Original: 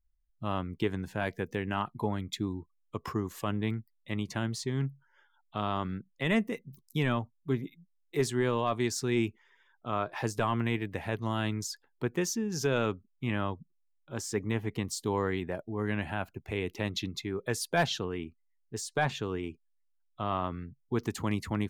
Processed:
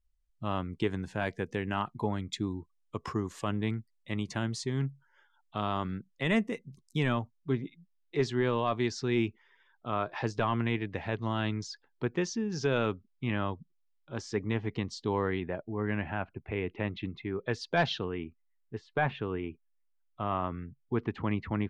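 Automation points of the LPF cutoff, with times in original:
LPF 24 dB/oct
7.13 s 9000 Hz
7.56 s 5300 Hz
14.88 s 5300 Hz
15.78 s 2700 Hz
17.22 s 2700 Hz
17.75 s 5800 Hz
18.24 s 2900 Hz

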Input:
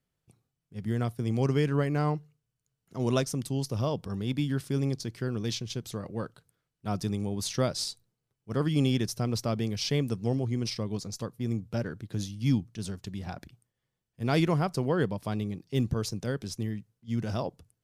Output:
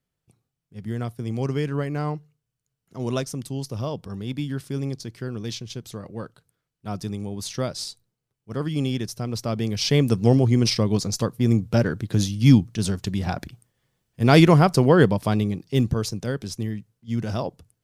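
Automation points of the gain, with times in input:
9.27 s +0.5 dB
10.21 s +11.5 dB
15.09 s +11.5 dB
16.16 s +4.5 dB

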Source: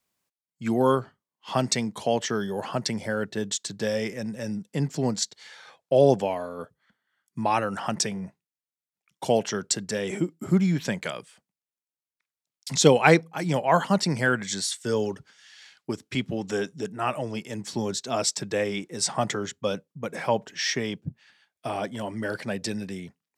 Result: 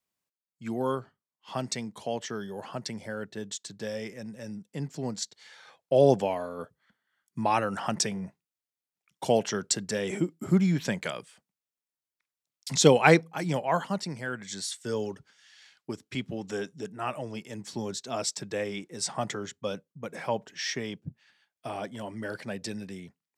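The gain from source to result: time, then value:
5 s -8 dB
6.1 s -1.5 dB
13.34 s -1.5 dB
14.25 s -12 dB
14.68 s -5.5 dB

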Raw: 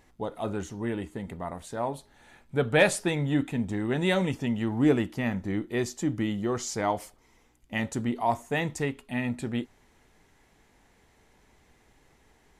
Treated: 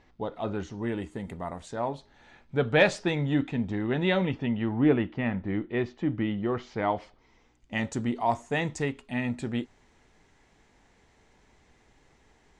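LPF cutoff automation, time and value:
LPF 24 dB/oct
0.62 s 5200 Hz
1.28 s 11000 Hz
1.95 s 5900 Hz
3.33 s 5900 Hz
4.76 s 3200 Hz
6.72 s 3200 Hz
7.78 s 8000 Hz

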